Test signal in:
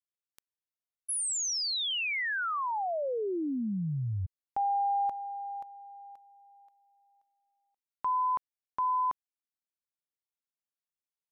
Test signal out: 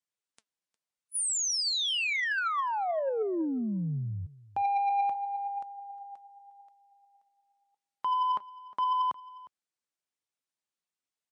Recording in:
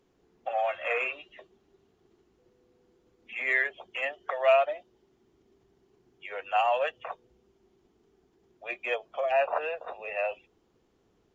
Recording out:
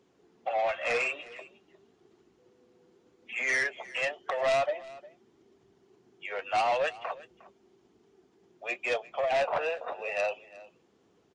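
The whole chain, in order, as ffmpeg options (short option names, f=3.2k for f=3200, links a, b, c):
-af "highpass=120,flanger=delay=0.1:depth=6.2:regen=74:speed=0.88:shape=triangular,asoftclip=type=tanh:threshold=-30.5dB,aecho=1:1:358:0.1,volume=8dB" -ar 22050 -c:a libmp3lame -b:a 56k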